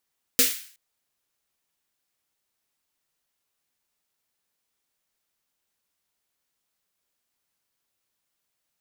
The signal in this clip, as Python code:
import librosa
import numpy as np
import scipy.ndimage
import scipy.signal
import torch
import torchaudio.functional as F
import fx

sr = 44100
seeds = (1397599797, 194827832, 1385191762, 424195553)

y = fx.drum_snare(sr, seeds[0], length_s=0.37, hz=260.0, second_hz=480.0, noise_db=9.0, noise_from_hz=1700.0, decay_s=0.22, noise_decay_s=0.49)